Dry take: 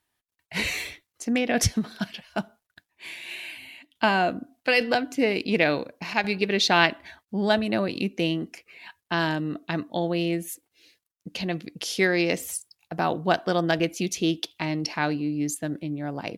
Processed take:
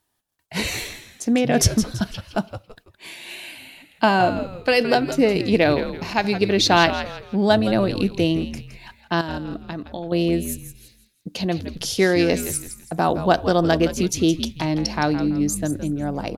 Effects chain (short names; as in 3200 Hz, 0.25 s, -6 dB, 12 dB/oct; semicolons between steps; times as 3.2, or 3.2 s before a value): bell 2200 Hz -7.5 dB 1.2 oct; 9.21–10.12 level quantiser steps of 18 dB; on a send: frequency-shifting echo 0.166 s, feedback 35%, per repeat -97 Hz, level -11 dB; on the sum: gain +6 dB